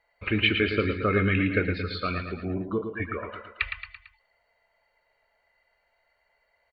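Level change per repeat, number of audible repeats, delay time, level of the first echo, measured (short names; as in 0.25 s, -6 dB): -6.0 dB, 4, 0.112 s, -7.0 dB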